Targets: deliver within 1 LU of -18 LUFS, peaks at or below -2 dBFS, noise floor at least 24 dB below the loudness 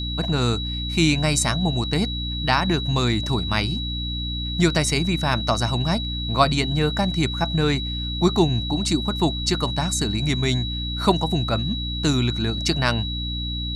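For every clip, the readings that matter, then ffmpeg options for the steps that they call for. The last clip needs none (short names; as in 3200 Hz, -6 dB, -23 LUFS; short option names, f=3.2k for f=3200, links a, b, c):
hum 60 Hz; harmonics up to 300 Hz; hum level -26 dBFS; steady tone 3900 Hz; tone level -29 dBFS; loudness -22.0 LUFS; peak -3.5 dBFS; loudness target -18.0 LUFS
-> -af "bandreject=f=60:t=h:w=6,bandreject=f=120:t=h:w=6,bandreject=f=180:t=h:w=6,bandreject=f=240:t=h:w=6,bandreject=f=300:t=h:w=6"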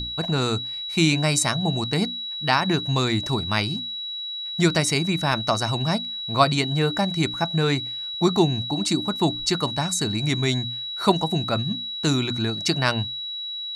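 hum none; steady tone 3900 Hz; tone level -29 dBFS
-> -af "bandreject=f=3.9k:w=30"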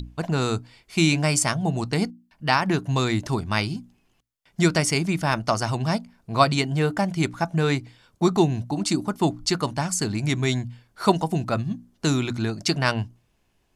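steady tone none; loudness -24.0 LUFS; peak -4.0 dBFS; loudness target -18.0 LUFS
-> -af "volume=6dB,alimiter=limit=-2dB:level=0:latency=1"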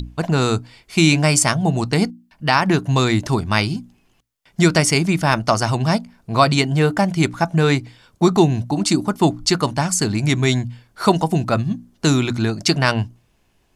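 loudness -18.5 LUFS; peak -2.0 dBFS; noise floor -60 dBFS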